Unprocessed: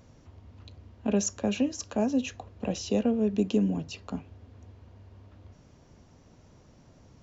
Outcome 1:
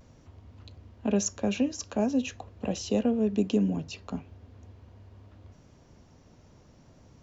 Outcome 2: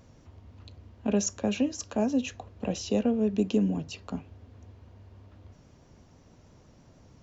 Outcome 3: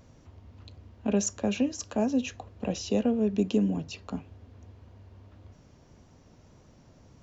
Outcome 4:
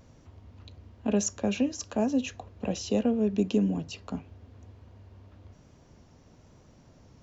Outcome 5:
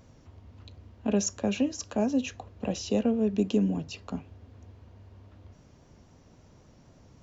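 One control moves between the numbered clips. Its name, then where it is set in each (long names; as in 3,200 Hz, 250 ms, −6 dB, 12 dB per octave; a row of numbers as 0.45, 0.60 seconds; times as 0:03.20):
pitch vibrato, speed: 0.43, 6.2, 1.7, 1.1, 3.8 Hertz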